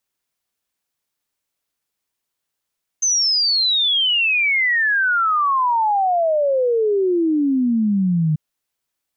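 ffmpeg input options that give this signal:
-f lavfi -i "aevalsrc='0.188*clip(min(t,5.34-t)/0.01,0,1)*sin(2*PI*6300*5.34/log(150/6300)*(exp(log(150/6300)*t/5.34)-1))':d=5.34:s=44100"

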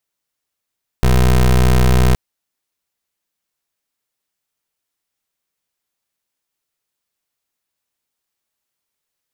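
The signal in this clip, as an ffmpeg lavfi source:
-f lavfi -i "aevalsrc='0.282*(2*lt(mod(62.7*t,1),0.22)-1)':d=1.12:s=44100"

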